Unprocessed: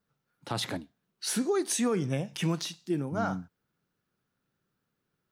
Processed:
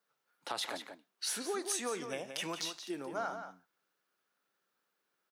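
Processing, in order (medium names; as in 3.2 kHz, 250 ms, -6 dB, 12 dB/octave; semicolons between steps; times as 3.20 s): high-pass 530 Hz 12 dB/octave; compression 2:1, threshold -39 dBFS, peak gain reduction 7 dB; echo from a far wall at 30 m, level -8 dB; trim +1.5 dB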